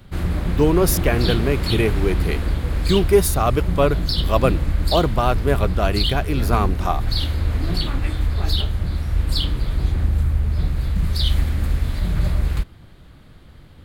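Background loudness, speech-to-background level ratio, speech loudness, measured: -23.0 LUFS, 1.5 dB, -21.5 LUFS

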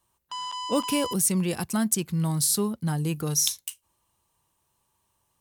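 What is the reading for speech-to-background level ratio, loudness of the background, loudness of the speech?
8.5 dB, -34.0 LUFS, -25.5 LUFS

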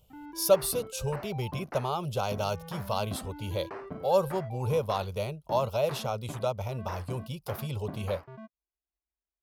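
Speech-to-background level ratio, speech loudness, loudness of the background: 12.5 dB, -31.5 LUFS, -44.0 LUFS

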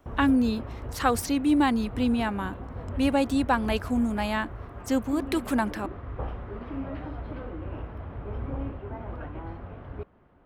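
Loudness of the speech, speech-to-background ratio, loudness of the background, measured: -26.5 LUFS, 11.5 dB, -38.0 LUFS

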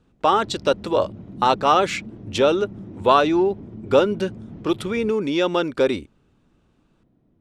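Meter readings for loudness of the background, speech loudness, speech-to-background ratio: -39.0 LUFS, -21.0 LUFS, 18.0 dB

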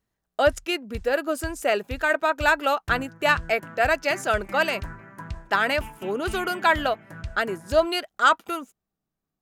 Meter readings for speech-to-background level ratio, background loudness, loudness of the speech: 16.0 dB, -40.0 LUFS, -24.0 LUFS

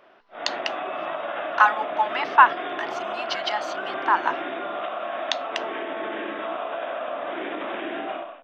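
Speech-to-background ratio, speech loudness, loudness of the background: 7.0 dB, -23.5 LUFS, -30.5 LUFS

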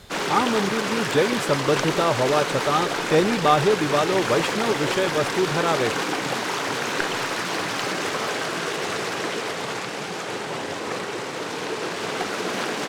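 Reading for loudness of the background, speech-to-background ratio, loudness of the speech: -26.0 LUFS, 2.5 dB, -23.5 LUFS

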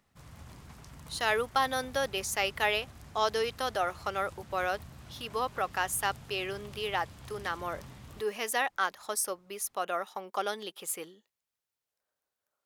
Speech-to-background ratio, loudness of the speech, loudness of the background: 17.5 dB, -32.5 LUFS, -50.0 LUFS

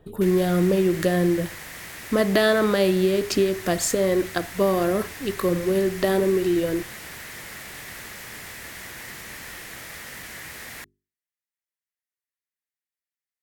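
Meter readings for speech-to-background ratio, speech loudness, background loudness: 14.5 dB, -22.5 LUFS, -37.0 LUFS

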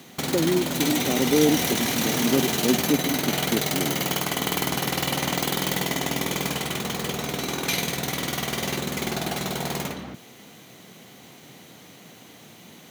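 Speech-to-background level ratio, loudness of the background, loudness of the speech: -0.5 dB, -25.5 LUFS, -26.0 LUFS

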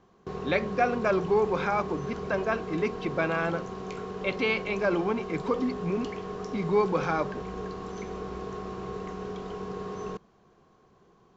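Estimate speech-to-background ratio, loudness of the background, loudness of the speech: 8.0 dB, -37.0 LUFS, -29.0 LUFS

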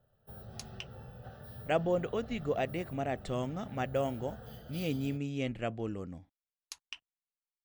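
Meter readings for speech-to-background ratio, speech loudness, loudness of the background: 14.0 dB, -35.0 LUFS, -49.0 LUFS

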